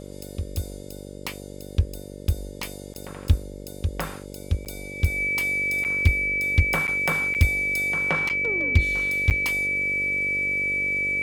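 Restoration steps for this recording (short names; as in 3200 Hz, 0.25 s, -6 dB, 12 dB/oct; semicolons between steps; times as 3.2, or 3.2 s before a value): clip repair -9 dBFS; de-hum 48.6 Hz, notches 12; notch 2300 Hz, Q 30; interpolate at 2.94/4.65/5.84/6.87/7.34/8.29/9.3, 8.7 ms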